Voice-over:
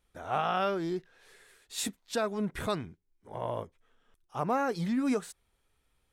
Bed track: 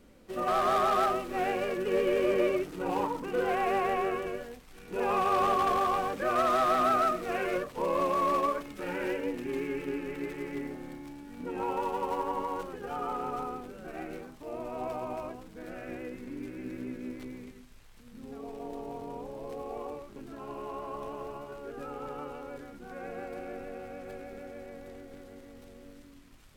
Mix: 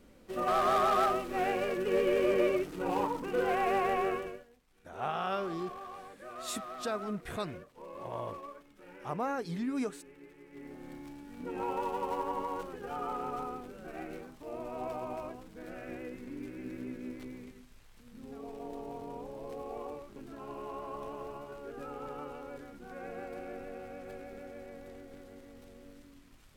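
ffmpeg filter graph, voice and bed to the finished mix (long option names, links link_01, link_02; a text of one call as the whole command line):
ffmpeg -i stem1.wav -i stem2.wav -filter_complex "[0:a]adelay=4700,volume=-5dB[link_01];[1:a]volume=14dB,afade=type=out:start_time=4.11:duration=0.34:silence=0.149624,afade=type=in:start_time=10.5:duration=0.48:silence=0.177828[link_02];[link_01][link_02]amix=inputs=2:normalize=0" out.wav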